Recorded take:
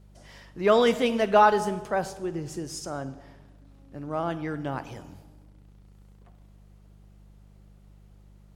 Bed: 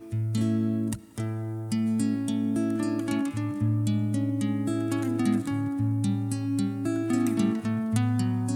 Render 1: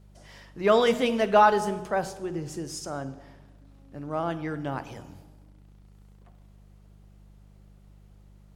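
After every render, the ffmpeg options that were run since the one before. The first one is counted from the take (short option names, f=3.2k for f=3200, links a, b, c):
-af "bandreject=f=60:t=h:w=4,bandreject=f=120:t=h:w=4,bandreject=f=180:t=h:w=4,bandreject=f=240:t=h:w=4,bandreject=f=300:t=h:w=4,bandreject=f=360:t=h:w=4,bandreject=f=420:t=h:w=4,bandreject=f=480:t=h:w=4,bandreject=f=540:t=h:w=4"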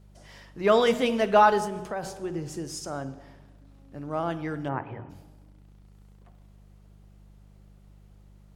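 -filter_complex "[0:a]asettb=1/sr,asplit=3[a][b][c];[a]atrim=end=1.654[d];[b]atrim=start=1.65:end=2.14,asetpts=PTS-STARTPTS,afade=t=in:d=0.004:c=qsin,afade=t=out:st=0.486:d=0.004:c=qsin,acompressor=threshold=-28dB:ratio=6:attack=3.2:release=140:knee=1:detection=peak[e];[c]atrim=start=2.136[f];[d][e]acrossfade=d=0.004:c1=hsin:c2=qsin[g];[g][f]acrossfade=d=0.004:c1=qsin:c2=hsin,asplit=3[h][i][j];[h]afade=t=out:st=4.68:d=0.02[k];[i]highpass=100,equalizer=f=110:t=q:w=4:g=10,equalizer=f=380:t=q:w=4:g=5,equalizer=f=940:t=q:w=4:g=4,equalizer=f=1.9k:t=q:w=4:g=4,lowpass=f=2.3k:w=0.5412,lowpass=f=2.3k:w=1.3066,afade=t=in:st=4.68:d=0.02,afade=t=out:st=5.09:d=0.02[l];[j]afade=t=in:st=5.09:d=0.02[m];[k][l][m]amix=inputs=3:normalize=0"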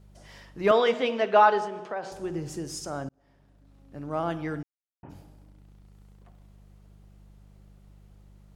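-filter_complex "[0:a]asettb=1/sr,asplit=3[a][b][c];[a]atrim=end=0.714[d];[b]atrim=start=0.71:end=2.12,asetpts=PTS-STARTPTS,afade=t=in:d=0.004:c=qsin,afade=t=out:st=1.406:d=0.004:c=qsin,highpass=310,lowpass=4.1k[e];[c]atrim=start=2.116[f];[d][e]acrossfade=d=0.004:c1=hsin:c2=qsin[g];[g][f]acrossfade=d=0.004:c1=qsin:c2=hsin,asplit=4[h][i][j][k];[h]atrim=end=3.09,asetpts=PTS-STARTPTS,afade=t=out:st=3.086:d=0.004:c=hsin[l];[i]atrim=start=3.09:end=4.63,asetpts=PTS-STARTPTS,afade=t=in:d=0.95,afade=t=out:st=1.536:d=0.004:c=hsin[m];[j]atrim=start=4.63:end=5.03,asetpts=PTS-STARTPTS,volume=0[n];[k]atrim=start=5.03,asetpts=PTS-STARTPTS,afade=t=in:d=0.004:c=hsin[o];[l][m][n][o]concat=n=4:v=0:a=1"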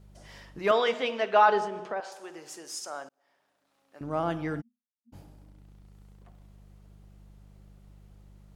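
-filter_complex "[0:a]asettb=1/sr,asplit=3[a][b][c];[a]atrim=end=0.594[d];[b]atrim=start=0.59:end=1.49,asetpts=PTS-STARTPTS,afade=t=in:d=0.004:c=qsin,afade=t=out:st=0.896:d=0.004:c=qsin,lowshelf=f=470:g=-8[e];[c]atrim=start=1.486[f];[d][e]acrossfade=d=0.004:c1=hsin:c2=qsin[g];[g][f]acrossfade=d=0.004:c1=qsin:c2=hsin,asettb=1/sr,asplit=3[h][i][j];[h]atrim=end=2.004[k];[i]atrim=start=2:end=4.01,asetpts=PTS-STARTPTS,afade=t=in:d=0.004:c=qsin,afade=t=out:st=2.006:d=0.004:c=qsin,highpass=700[l];[j]atrim=start=4.006[m];[k][l]acrossfade=d=0.004:c1=hsin:c2=qsin[n];[n][m]acrossfade=d=0.004:c1=qsin:c2=hsin,asplit=3[o][p][q];[o]afade=t=out:st=4.6:d=0.02[r];[p]asuperpass=centerf=230:order=12:qfactor=7.3,afade=t=in:st=4.6:d=0.02,afade=t=out:st=5.12:d=0.02[s];[q]afade=t=in:st=5.12:d=0.02[t];[r][s][t]amix=inputs=3:normalize=0"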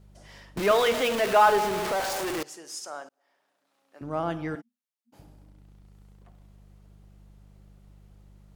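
-filter_complex "[0:a]asettb=1/sr,asplit=3[a][b][c];[a]atrim=end=0.574[d];[b]atrim=start=0.57:end=2.43,asetpts=PTS-STARTPTS,afade=t=in:d=0.004:c=qsin,afade=t=out:st=1.856:d=0.004:c=qsin,aeval=exprs='val(0)+0.5*0.0531*sgn(val(0))':c=same[e];[c]atrim=start=2.426[f];[d][e]acrossfade=d=0.004:c1=hsin:c2=qsin[g];[g][f]acrossfade=d=0.004:c1=qsin:c2=hsin,asettb=1/sr,asplit=3[h][i][j];[h]atrim=end=3.014[k];[i]atrim=start=3.01:end=4.02,asetpts=PTS-STARTPTS,afade=t=in:d=0.004:c=qsin,afade=t=out:st=1.006:d=0.004:c=qsin,highpass=200[l];[j]atrim=start=4.016[m];[k][l]acrossfade=d=0.004:c1=hsin:c2=qsin[n];[n][m]acrossfade=d=0.004:c1=qsin:c2=hsin,asettb=1/sr,asplit=3[o][p][q];[o]atrim=end=4.554[r];[p]atrim=start=4.55:end=5.19,asetpts=PTS-STARTPTS,afade=t=in:d=0.004:c=qsin,afade=t=out:st=0.636:d=0.004:c=qsin,highpass=340[s];[q]atrim=start=5.186[t];[r][s]acrossfade=d=0.004:c1=hsin:c2=qsin[u];[u][t]acrossfade=d=0.004:c1=qsin:c2=hsin"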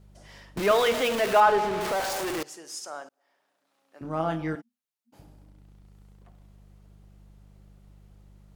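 -filter_complex "[0:a]asettb=1/sr,asplit=3[a][b][c];[a]atrim=end=1.404[d];[b]atrim=start=1.4:end=1.81,asetpts=PTS-STARTPTS,afade=t=in:d=0.004:c=qsin,afade=t=out:st=0.406:d=0.004:c=qsin,aemphasis=mode=reproduction:type=50kf[e];[c]atrim=start=1.806[f];[d][e]acrossfade=d=0.004:c1=hsin:c2=qsin[g];[g][f]acrossfade=d=0.004:c1=qsin:c2=hsin,asettb=1/sr,asplit=3[h][i][j];[h]atrim=end=4.024[k];[i]atrim=start=4.02:end=4.53,asetpts=PTS-STARTPTS,afade=t=in:d=0.004:c=qsin,afade=t=out:st=0.506:d=0.004:c=qsin,asplit=2[l][m];[m]adelay=25,volume=-5dB[n];[l][n]amix=inputs=2:normalize=0,atrim=end_sample=22491[o];[j]atrim=start=4.526[p];[k][o]acrossfade=d=0.004:c1=hsin:c2=qsin[q];[q][p]acrossfade=d=0.004:c1=qsin:c2=hsin"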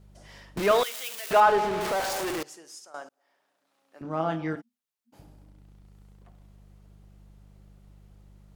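-filter_complex "[0:a]asettb=1/sr,asplit=3[a][b][c];[a]atrim=end=0.834[d];[b]atrim=start=0.83:end=1.31,asetpts=PTS-STARTPTS,afade=t=in:d=0.004:c=qsin,afade=t=out:st=0.476:d=0.004:c=qsin,aderivative[e];[c]atrim=start=1.306[f];[d][e]acrossfade=d=0.004:c1=hsin:c2=qsin[g];[g][f]acrossfade=d=0.004:c1=qsin:c2=hsin,asettb=1/sr,asplit=3[h][i][j];[h]atrim=end=4.024[k];[i]atrim=start=4.02:end=4.57,asetpts=PTS-STARTPTS,afade=t=in:d=0.004:c=qsin,afade=t=out:st=0.546:d=0.004:c=qsin,highpass=120,lowpass=6.9k[l];[j]atrim=start=4.566[m];[k][l]acrossfade=d=0.004:c1=hsin:c2=qsin[n];[n][m]acrossfade=d=0.004:c1=qsin:c2=hsin,asplit=2[o][p];[o]atrim=end=2.94,asetpts=PTS-STARTPTS,afade=t=out:st=2.31:d=0.63:silence=0.188365[q];[p]atrim=start=2.94,asetpts=PTS-STARTPTS,afade=t=in:d=0.004:c=hsin:silence=0.188365[r];[q][r]concat=n=2:v=0:a=1"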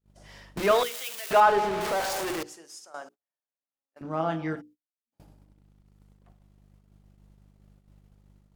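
-af "bandreject=f=60:t=h:w=6,bandreject=f=120:t=h:w=6,bandreject=f=180:t=h:w=6,bandreject=f=240:t=h:w=6,bandreject=f=300:t=h:w=6,bandreject=f=360:t=h:w=6,bandreject=f=420:t=h:w=6,bandreject=f=480:t=h:w=6,agate=range=-31dB:threshold=-51dB:ratio=16:detection=peak"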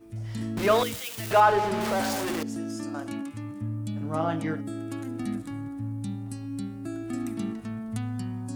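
-filter_complex "[1:a]volume=-7dB[a];[0:a][a]amix=inputs=2:normalize=0"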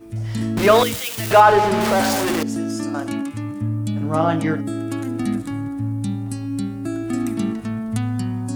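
-af "volume=9dB,alimiter=limit=-2dB:level=0:latency=1"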